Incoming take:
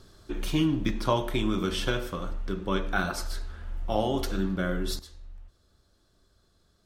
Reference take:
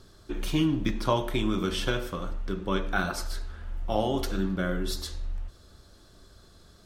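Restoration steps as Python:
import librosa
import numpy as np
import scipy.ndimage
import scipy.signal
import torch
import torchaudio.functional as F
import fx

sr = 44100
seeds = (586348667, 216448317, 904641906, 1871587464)

y = fx.fix_level(x, sr, at_s=4.99, step_db=12.0)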